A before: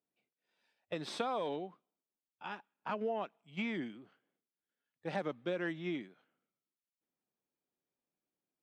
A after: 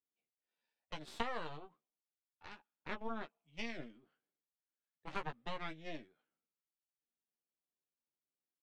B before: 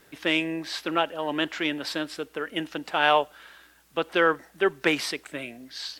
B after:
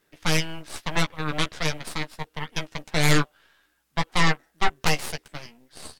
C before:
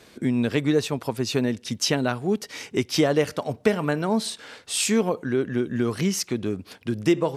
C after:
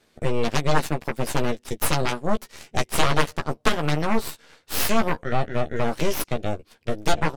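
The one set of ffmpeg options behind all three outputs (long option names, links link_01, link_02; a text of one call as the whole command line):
ffmpeg -i in.wav -filter_complex "[0:a]aeval=exprs='0.501*(cos(1*acos(clip(val(0)/0.501,-1,1)))-cos(1*PI/2))+0.2*(cos(3*acos(clip(val(0)/0.501,-1,1)))-cos(3*PI/2))+0.1*(cos(8*acos(clip(val(0)/0.501,-1,1)))-cos(8*PI/2))':channel_layout=same,asplit=2[link_01][link_02];[link_02]adelay=13,volume=-6dB[link_03];[link_01][link_03]amix=inputs=2:normalize=0,volume=1.5dB" out.wav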